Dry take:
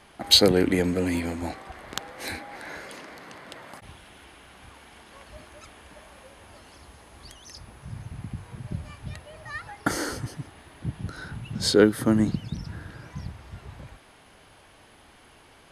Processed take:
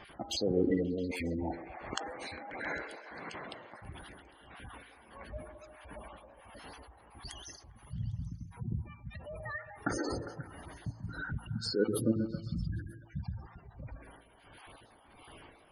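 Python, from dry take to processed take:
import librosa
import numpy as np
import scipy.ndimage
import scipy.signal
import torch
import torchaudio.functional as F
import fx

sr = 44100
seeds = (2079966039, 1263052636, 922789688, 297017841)

p1 = fx.spec_dropout(x, sr, seeds[0], share_pct=21)
p2 = p1 * (1.0 - 0.76 / 2.0 + 0.76 / 2.0 * np.cos(2.0 * np.pi * 1.5 * (np.arange(len(p1)) / sr)))
p3 = fx.over_compress(p2, sr, threshold_db=-37.0, ratio=-1.0)
p4 = p2 + (p3 * 10.0 ** (0.0 / 20.0))
p5 = fx.dispersion(p4, sr, late='lows', ms=76.0, hz=2400.0, at=(7.56, 8.7))
p6 = fx.comb_fb(p5, sr, f0_hz=56.0, decay_s=0.94, harmonics='all', damping=0.0, mix_pct=60)
p7 = fx.spec_gate(p6, sr, threshold_db=-15, keep='strong')
y = p7 + fx.echo_stepped(p7, sr, ms=134, hz=430.0, octaves=0.7, feedback_pct=70, wet_db=-6.5, dry=0)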